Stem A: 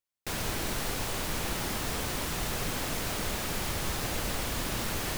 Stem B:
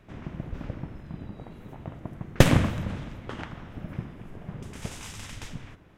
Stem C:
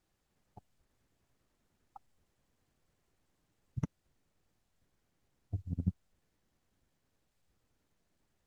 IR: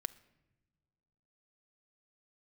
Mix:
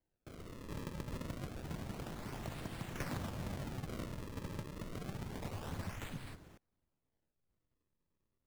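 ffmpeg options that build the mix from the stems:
-filter_complex "[0:a]alimiter=level_in=1.12:limit=0.0631:level=0:latency=1:release=40,volume=0.891,volume=0.178[s0];[1:a]adelay=600,volume=0.75[s1];[2:a]lowpass=2000,acontrast=77,volume=0.211[s2];[s0][s1][s2]amix=inputs=3:normalize=0,acrossover=split=90|730[s3][s4][s5];[s3]acompressor=threshold=0.00447:ratio=4[s6];[s4]acompressor=threshold=0.00891:ratio=4[s7];[s5]acompressor=threshold=0.00631:ratio=4[s8];[s6][s7][s8]amix=inputs=3:normalize=0,acrusher=samples=34:mix=1:aa=0.000001:lfo=1:lforange=54.4:lforate=0.28,volume=50.1,asoftclip=hard,volume=0.02"

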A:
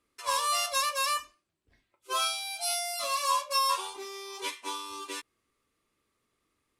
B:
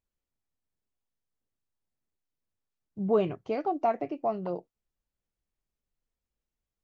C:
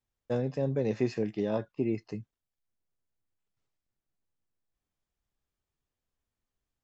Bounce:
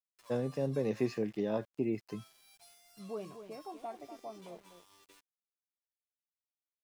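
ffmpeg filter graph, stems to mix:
-filter_complex "[0:a]acompressor=threshold=0.01:ratio=6,volume=0.133,asplit=2[s0][s1];[s1]volume=0.126[s2];[1:a]volume=0.15,asplit=2[s3][s4];[s4]volume=0.316[s5];[2:a]volume=0.708[s6];[s2][s5]amix=inputs=2:normalize=0,aecho=0:1:245:1[s7];[s0][s3][s6][s7]amix=inputs=4:normalize=0,highpass=120,aeval=exprs='val(0)*gte(abs(val(0)),0.00119)':c=same"

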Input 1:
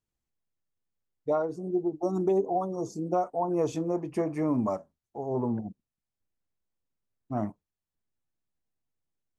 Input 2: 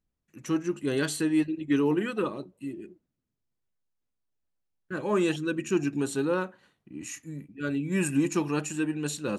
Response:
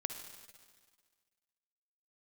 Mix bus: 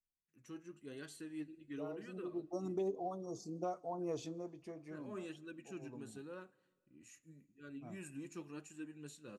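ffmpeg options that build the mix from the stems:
-filter_complex "[0:a]equalizer=f=4100:t=o:w=1.3:g=10,adelay=500,volume=0.224,afade=t=out:st=4.03:d=0.64:silence=0.375837,asplit=2[s0][s1];[s1]volume=0.133[s2];[1:a]flanger=delay=2.5:depth=6.1:regen=65:speed=0.92:shape=sinusoidal,volume=0.126,asplit=3[s3][s4][s5];[s4]volume=0.141[s6];[s5]apad=whole_len=436006[s7];[s0][s7]sidechaincompress=threshold=0.00224:ratio=8:attack=16:release=140[s8];[2:a]atrim=start_sample=2205[s9];[s2][s6]amix=inputs=2:normalize=0[s10];[s10][s9]afir=irnorm=-1:irlink=0[s11];[s8][s3][s11]amix=inputs=3:normalize=0,equalizer=f=880:w=3.2:g=-5"

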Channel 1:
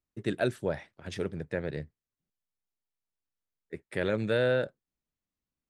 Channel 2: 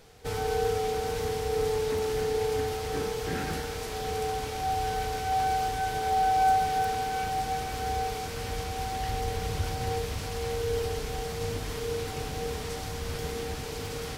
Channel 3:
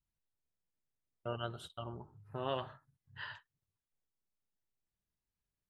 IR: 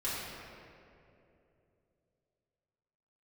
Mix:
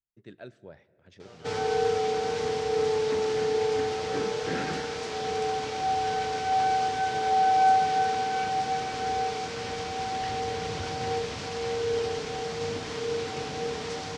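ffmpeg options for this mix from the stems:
-filter_complex "[0:a]volume=0.15,asplit=2[s0][s1];[s1]volume=0.0668[s2];[1:a]highpass=160,adelay=1200,volume=1.33[s3];[2:a]volume=0.178[s4];[3:a]atrim=start_sample=2205[s5];[s2][s5]afir=irnorm=-1:irlink=0[s6];[s0][s3][s4][s6]amix=inputs=4:normalize=0,lowpass=f=6700:w=0.5412,lowpass=f=6700:w=1.3066"

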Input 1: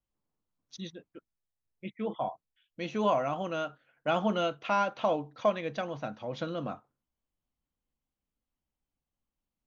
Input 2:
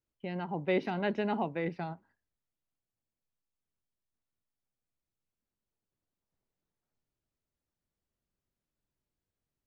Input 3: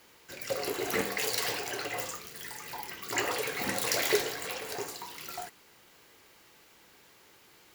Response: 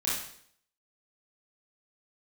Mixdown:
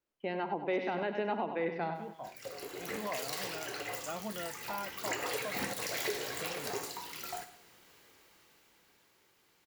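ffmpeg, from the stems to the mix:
-filter_complex "[0:a]volume=0.237[s0];[1:a]highpass=320,highshelf=f=3700:g=-7.5,acontrast=56,volume=0.841,asplit=3[s1][s2][s3];[s2]volume=0.1[s4];[s3]volume=0.376[s5];[2:a]dynaudnorm=f=220:g=17:m=4.47,adelay=1950,volume=0.237,asplit=3[s6][s7][s8];[s7]volume=0.141[s9];[s8]volume=0.141[s10];[3:a]atrim=start_sample=2205[s11];[s4][s9]amix=inputs=2:normalize=0[s12];[s12][s11]afir=irnorm=-1:irlink=0[s13];[s5][s10]amix=inputs=2:normalize=0,aecho=0:1:98|196|294|392|490|588:1|0.43|0.185|0.0795|0.0342|0.0147[s14];[s0][s1][s6][s13][s14]amix=inputs=5:normalize=0,alimiter=limit=0.0668:level=0:latency=1:release=275"

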